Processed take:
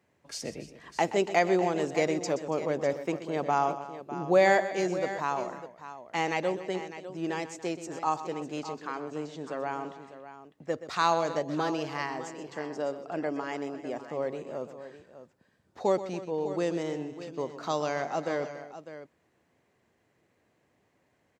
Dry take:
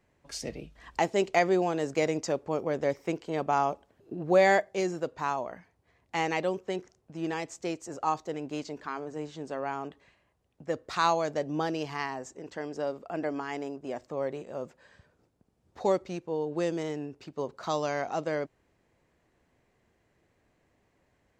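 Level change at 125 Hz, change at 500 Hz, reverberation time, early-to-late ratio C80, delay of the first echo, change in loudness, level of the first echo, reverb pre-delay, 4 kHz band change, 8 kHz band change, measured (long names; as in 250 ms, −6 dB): −0.5 dB, +0.5 dB, no reverb audible, no reverb audible, 126 ms, +0.5 dB, −13.0 dB, no reverb audible, +0.5 dB, +0.5 dB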